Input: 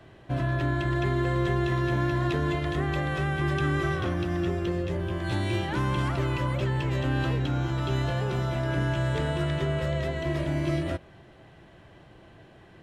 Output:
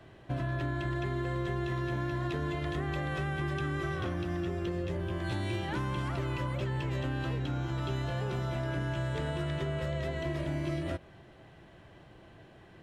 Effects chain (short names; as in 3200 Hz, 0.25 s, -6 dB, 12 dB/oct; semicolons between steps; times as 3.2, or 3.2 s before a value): compressor, threshold -27 dBFS, peak gain reduction 6 dB; gain -2.5 dB